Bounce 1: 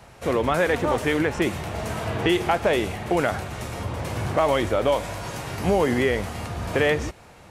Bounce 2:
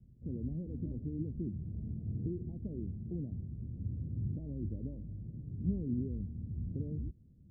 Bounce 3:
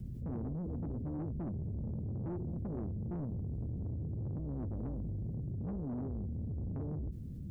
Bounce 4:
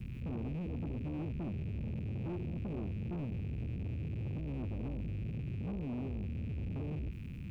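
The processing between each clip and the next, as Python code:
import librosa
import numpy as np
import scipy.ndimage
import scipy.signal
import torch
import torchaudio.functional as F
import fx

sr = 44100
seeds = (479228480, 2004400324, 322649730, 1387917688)

y1 = scipy.signal.sosfilt(scipy.signal.cheby2(4, 70, 1100.0, 'lowpass', fs=sr, output='sos'), x)
y1 = y1 * 10.0 ** (-7.0 / 20.0)
y2 = fx.rider(y1, sr, range_db=4, speed_s=0.5)
y2 = 10.0 ** (-39.5 / 20.0) * np.tanh(y2 / 10.0 ** (-39.5 / 20.0))
y2 = fx.env_flatten(y2, sr, amount_pct=70)
y2 = y2 * 10.0 ** (3.5 / 20.0)
y3 = fx.rattle_buzz(y2, sr, strikes_db=-49.0, level_db=-48.0)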